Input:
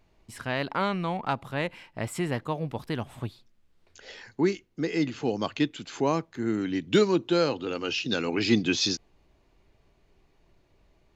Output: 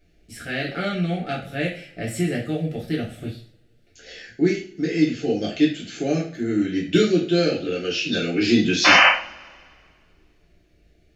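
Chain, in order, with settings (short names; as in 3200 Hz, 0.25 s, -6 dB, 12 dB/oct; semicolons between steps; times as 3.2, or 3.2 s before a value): Butterworth band-stop 1000 Hz, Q 1.4; painted sound noise, 8.84–9.09, 500–3100 Hz -17 dBFS; two-slope reverb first 0.4 s, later 2 s, from -27 dB, DRR -5.5 dB; gain -1.5 dB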